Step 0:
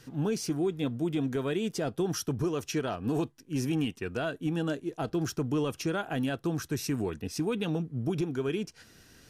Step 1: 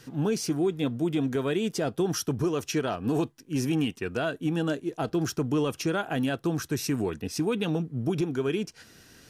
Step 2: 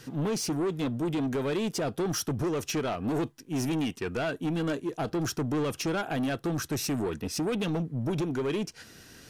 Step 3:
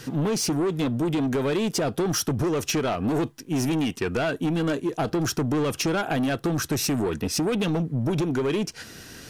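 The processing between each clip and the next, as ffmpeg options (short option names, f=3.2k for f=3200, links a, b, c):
-af "lowshelf=f=64:g=-8,volume=3.5dB"
-af "asoftclip=type=tanh:threshold=-27.5dB,volume=2.5dB"
-af "acompressor=threshold=-30dB:ratio=6,volume=8dB"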